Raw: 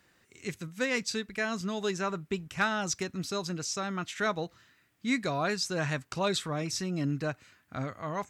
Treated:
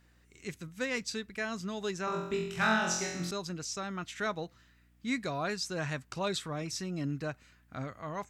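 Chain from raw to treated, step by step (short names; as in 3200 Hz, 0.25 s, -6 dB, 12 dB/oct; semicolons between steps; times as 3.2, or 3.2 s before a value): hum 60 Hz, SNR 28 dB; 2.05–3.31 flutter echo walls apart 3.9 m, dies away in 0.76 s; gain -4 dB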